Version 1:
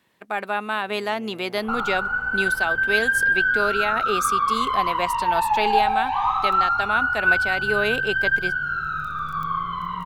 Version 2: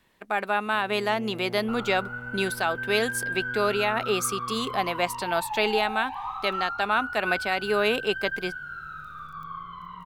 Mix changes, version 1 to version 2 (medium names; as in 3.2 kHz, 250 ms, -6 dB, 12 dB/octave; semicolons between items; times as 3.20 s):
first sound: remove high-pass 450 Hz 6 dB/octave; second sound -12.0 dB